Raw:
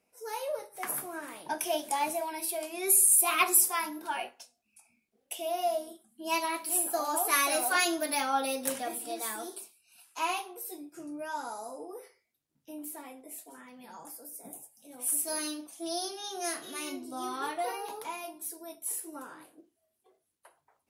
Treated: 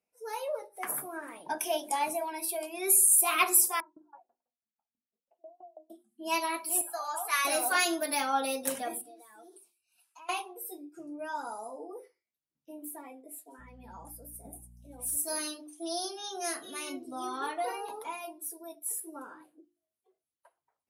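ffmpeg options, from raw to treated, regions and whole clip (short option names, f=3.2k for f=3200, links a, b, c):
-filter_complex "[0:a]asettb=1/sr,asplit=3[a][b][c];[a]atrim=end=3.804[d];[b]atrim=start=3.8:end=5.9,asetpts=PTS-STARTPTS,afade=t=in:d=0.004:c=qsin,afade=t=out:st=2.096:d=0.004:c=qsin,lowpass=f=1.2k:w=0.5412,lowpass=f=1.2k:w=1.3066,acompressor=threshold=-50dB:ratio=2:attack=3.2:release=140:knee=1:detection=peak,aeval=exprs='val(0)*pow(10,-27*if(lt(mod(6.1*n/s,1),2*abs(6.1)/1000),1-mod(6.1*n/s,1)/(2*abs(6.1)/1000),(mod(6.1*n/s,1)-2*abs(6.1)/1000)/(1-2*abs(6.1)/1000))/20)':c=same[e];[c]atrim=start=5.896[f];[d][e]acrossfade=d=0.004:c1=hsin:c2=qsin[g];[g][f]acrossfade=d=0.004:c1=qsin:c2=hsin,asettb=1/sr,asplit=3[h][i][j];[h]atrim=end=6.814[k];[i]atrim=start=6.81:end=7.45,asetpts=PTS-STARTPTS,afade=t=in:d=0.004:c=qsin,afade=t=out:st=0.636:d=0.004:c=qsin,highpass=930,highshelf=f=8.6k:g=-11.5[l];[j]atrim=start=7.446[m];[k][l]acrossfade=d=0.004:c1=hsin:c2=qsin[n];[n][m]acrossfade=d=0.004:c1=qsin:c2=hsin,asettb=1/sr,asplit=3[o][p][q];[o]atrim=end=9.014[r];[p]atrim=start=9.01:end=10.29,asetpts=PTS-STARTPTS,afade=t=in:d=0.004:c=qsin,afade=t=out:st=1.276:d=0.004:c=qsin,equalizer=f=180:w=1.9:g=-4,acompressor=threshold=-47dB:ratio=10:attack=3.2:release=140:knee=1:detection=peak[s];[q]atrim=start=10.286[t];[r][s]acrossfade=d=0.004:c1=hsin:c2=qsin[u];[u][t]acrossfade=d=0.004:c1=qsin:c2=hsin,asettb=1/sr,asplit=3[v][w][x];[v]atrim=end=13.594[y];[w]atrim=start=13.59:end=15.17,asetpts=PTS-STARTPTS,afade=t=in:d=0.004:c=qsin,afade=t=out:st=1.576:d=0.004:c=qsin,asoftclip=type=hard:threshold=-30dB,aeval=exprs='val(0)+0.00251*(sin(2*PI*60*n/s)+sin(2*PI*2*60*n/s)/2+sin(2*PI*3*60*n/s)/3+sin(2*PI*4*60*n/s)/4+sin(2*PI*5*60*n/s)/5)':c=same[z];[x]atrim=start=15.166[aa];[y][z]acrossfade=d=0.004:c1=hsin:c2=qsin[ab];[ab][aa]acrossfade=d=0.004:c1=qsin:c2=hsin,afftdn=nr=13:nf=-49,bandreject=f=50:t=h:w=6,bandreject=f=100:t=h:w=6,bandreject=f=150:t=h:w=6,bandreject=f=200:t=h:w=6,bandreject=f=250:t=h:w=6,bandreject=f=300:t=h:w=6,bandreject=f=350:t=h:w=6"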